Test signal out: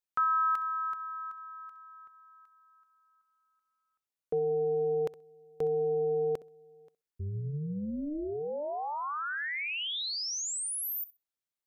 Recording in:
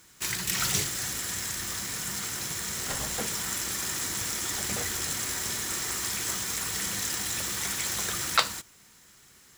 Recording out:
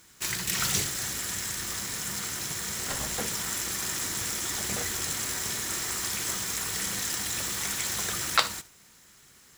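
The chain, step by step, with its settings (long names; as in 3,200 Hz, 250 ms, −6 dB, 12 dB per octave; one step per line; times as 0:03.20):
flutter between parallel walls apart 11.1 metres, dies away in 0.22 s
amplitude modulation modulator 300 Hz, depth 30%
level +2 dB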